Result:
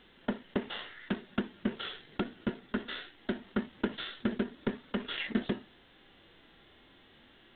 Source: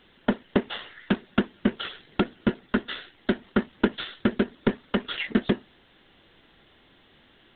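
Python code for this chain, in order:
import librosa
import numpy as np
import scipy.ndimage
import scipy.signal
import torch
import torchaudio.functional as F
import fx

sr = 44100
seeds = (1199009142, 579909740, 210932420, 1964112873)

y = fx.hpss(x, sr, part='percussive', gain_db=-12)
y = y * 10.0 ** (2.0 / 20.0)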